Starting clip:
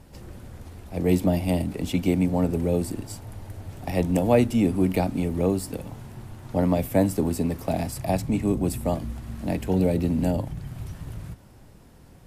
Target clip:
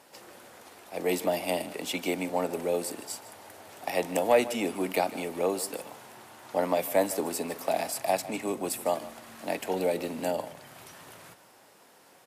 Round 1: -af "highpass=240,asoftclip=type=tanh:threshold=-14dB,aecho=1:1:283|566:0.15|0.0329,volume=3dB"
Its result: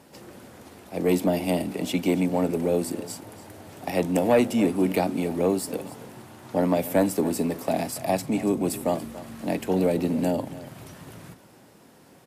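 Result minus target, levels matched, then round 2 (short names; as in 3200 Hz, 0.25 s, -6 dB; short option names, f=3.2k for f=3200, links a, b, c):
echo 0.13 s late; 250 Hz band +5.5 dB
-af "highpass=570,asoftclip=type=tanh:threshold=-14dB,aecho=1:1:153|306:0.15|0.0329,volume=3dB"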